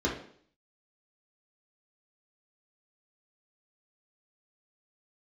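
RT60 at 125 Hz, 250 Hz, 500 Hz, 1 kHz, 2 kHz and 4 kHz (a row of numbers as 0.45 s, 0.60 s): 0.55 s, 0.60 s, 0.60 s, 0.55 s, 0.55 s, 0.55 s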